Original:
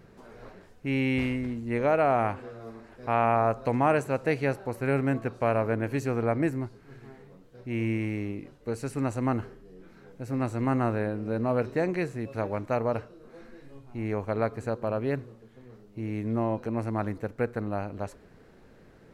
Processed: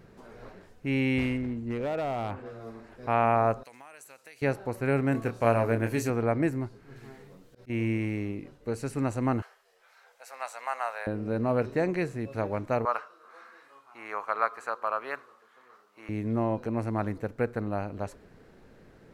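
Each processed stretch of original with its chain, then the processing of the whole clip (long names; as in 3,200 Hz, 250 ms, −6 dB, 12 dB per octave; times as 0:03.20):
0:01.37–0:02.46: high-shelf EQ 3,200 Hz −10 dB + downward compressor 4 to 1, threshold −26 dBFS + gain into a clipping stage and back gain 26.5 dB
0:03.63–0:04.42: first difference + downward compressor 5 to 1, threshold −44 dBFS
0:05.12–0:06.10: high-shelf EQ 5,400 Hz +10 dB + double-tracking delay 26 ms −7 dB
0:06.96–0:07.70: high-shelf EQ 2,800 Hz +8.5 dB + volume swells 108 ms
0:09.42–0:11.07: inverse Chebyshev high-pass filter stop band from 330 Hz + high-shelf EQ 3,000 Hz +4.5 dB
0:12.85–0:16.09: high-pass filter 810 Hz + parametric band 1,200 Hz +13 dB 0.74 octaves
whole clip: no processing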